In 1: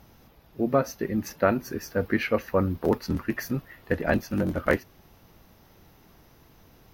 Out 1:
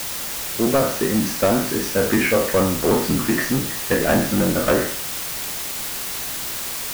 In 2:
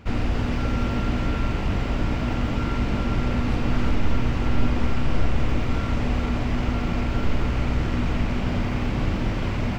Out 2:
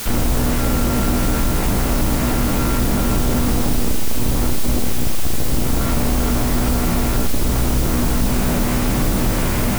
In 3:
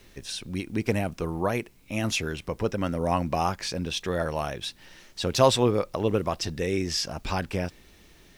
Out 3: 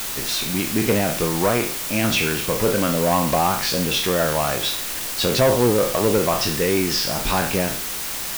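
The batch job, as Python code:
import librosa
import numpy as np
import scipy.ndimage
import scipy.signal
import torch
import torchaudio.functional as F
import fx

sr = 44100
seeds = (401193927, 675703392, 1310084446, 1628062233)

y = fx.spec_trails(x, sr, decay_s=0.45)
y = fx.env_lowpass_down(y, sr, base_hz=790.0, full_db=-15.0)
y = fx.peak_eq(y, sr, hz=84.0, db=-11.5, octaves=0.42)
y = 10.0 ** (-19.0 / 20.0) * np.tanh(y / 10.0 ** (-19.0 / 20.0))
y = fx.quant_dither(y, sr, seeds[0], bits=6, dither='triangular')
y = F.gain(torch.from_numpy(y), 8.0).numpy()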